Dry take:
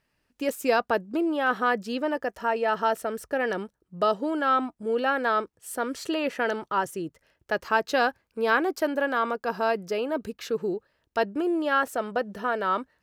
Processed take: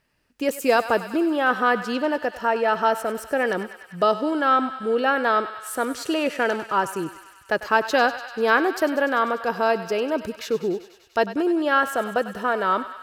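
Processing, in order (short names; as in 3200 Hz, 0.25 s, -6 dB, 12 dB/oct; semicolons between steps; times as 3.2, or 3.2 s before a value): thinning echo 98 ms, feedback 79%, high-pass 740 Hz, level -12.5 dB; gain +4 dB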